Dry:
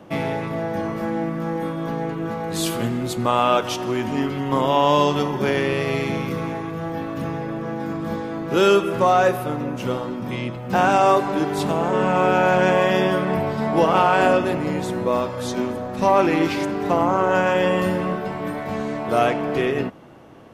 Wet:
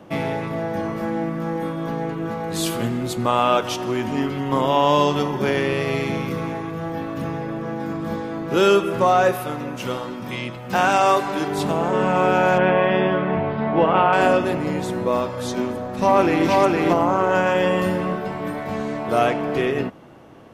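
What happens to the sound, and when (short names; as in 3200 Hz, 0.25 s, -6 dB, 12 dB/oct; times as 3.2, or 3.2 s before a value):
9.32–11.48 tilt shelf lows -4 dB
12.58–14.13 LPF 3200 Hz 24 dB/oct
15.62–16.47 echo throw 0.46 s, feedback 15%, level -1.5 dB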